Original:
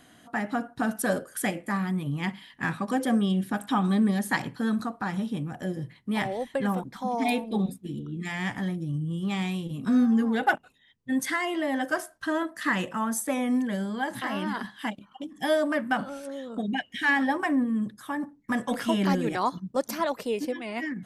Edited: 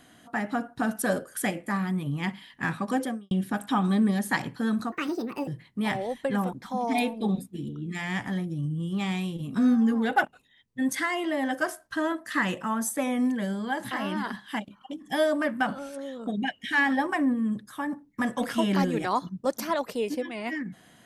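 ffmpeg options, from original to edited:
-filter_complex "[0:a]asplit=4[s0][s1][s2][s3];[s0]atrim=end=3.31,asetpts=PTS-STARTPTS,afade=t=out:st=3.01:d=0.3:c=qua[s4];[s1]atrim=start=3.31:end=4.924,asetpts=PTS-STARTPTS,afade=t=in:d=0.004:c=hsin[s5];[s2]atrim=start=4.92:end=5.78,asetpts=PTS-STARTPTS,asetrate=68355,aresample=44100,atrim=end_sample=24468,asetpts=PTS-STARTPTS[s6];[s3]atrim=start=5.776[s7];[s4][s5]concat=n=2:v=0:a=1[s8];[s8][s6]acrossfade=d=0.004:c1=hsin:c2=hsin[s9];[s9][s7]acrossfade=d=0.004:c1=hsin:c2=hsin"

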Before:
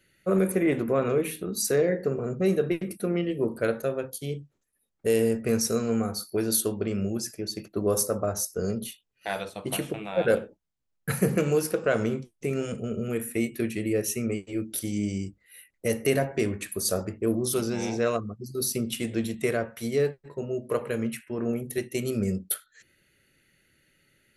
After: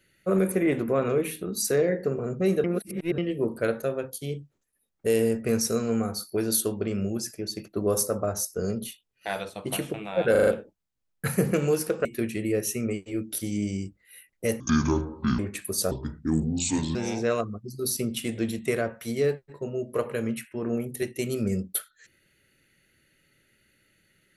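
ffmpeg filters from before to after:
-filter_complex "[0:a]asplit=12[s0][s1][s2][s3][s4][s5][s6][s7][s8][s9][s10][s11];[s0]atrim=end=2.642[s12];[s1]atrim=start=2.638:end=3.182,asetpts=PTS-STARTPTS,areverse[s13];[s2]atrim=start=3.178:end=10.352[s14];[s3]atrim=start=10.308:end=10.352[s15];[s4]atrim=start=10.308:end=10.352[s16];[s5]atrim=start=10.308:end=10.352[s17];[s6]atrim=start=10.308:end=11.892[s18];[s7]atrim=start=13.458:end=16.014[s19];[s8]atrim=start=16.01:end=16.46,asetpts=PTS-STARTPTS,asetrate=25137,aresample=44100[s20];[s9]atrim=start=16.456:end=16.984[s21];[s10]atrim=start=16.98:end=17.71,asetpts=PTS-STARTPTS,asetrate=30870,aresample=44100[s22];[s11]atrim=start=17.706[s23];[s12][s13]acrossfade=d=0.004:c1=hsin:c2=hsin[s24];[s24][s14]acrossfade=d=0.004:c1=hsin:c2=hsin[s25];[s25][s15]acrossfade=d=0.004:c1=hsin:c2=hsin[s26];[s26][s16]acrossfade=d=0.004:c1=hsin:c2=hsin[s27];[s27][s17]acrossfade=d=0.004:c1=hsin:c2=hsin[s28];[s28][s18]acrossfade=d=0.004:c1=hsin:c2=hsin[s29];[s29][s19]acrossfade=d=0.004:c1=hsin:c2=hsin[s30];[s30][s20]acrossfade=d=0.004:c1=hsin:c2=hsin[s31];[s31][s21]acrossfade=d=0.004:c1=hsin:c2=hsin[s32];[s32][s22]acrossfade=d=0.004:c1=hsin:c2=hsin[s33];[s33][s23]acrossfade=d=0.004:c1=hsin:c2=hsin"

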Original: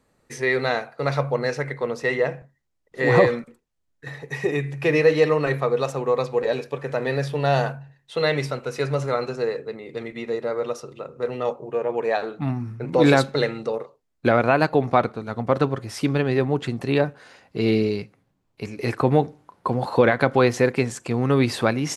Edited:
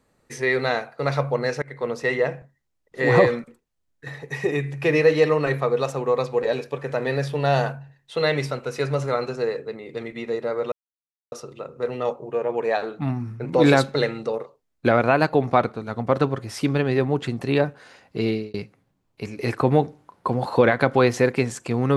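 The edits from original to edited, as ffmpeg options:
-filter_complex "[0:a]asplit=4[s0][s1][s2][s3];[s0]atrim=end=1.62,asetpts=PTS-STARTPTS,afade=t=out:st=1.616:d=0.004:c=hsin:silence=0.0841395[s4];[s1]atrim=start=1.62:end=10.72,asetpts=PTS-STARTPTS,afade=t=in:d=0.25:silence=0.0841395,afade=t=out:st=9.096:d=0.004:c=hsin,apad=pad_dur=0.6[s5];[s2]atrim=start=10.72:end=17.94,asetpts=PTS-STARTPTS,afade=t=in:d=0.004:c=hsin,afade=t=out:st=6.86:d=0.36[s6];[s3]atrim=start=17.94,asetpts=PTS-STARTPTS,afade=t=in:d=0.004:c=hsin[s7];[s4][s5][s6][s7]concat=n=4:v=0:a=1"

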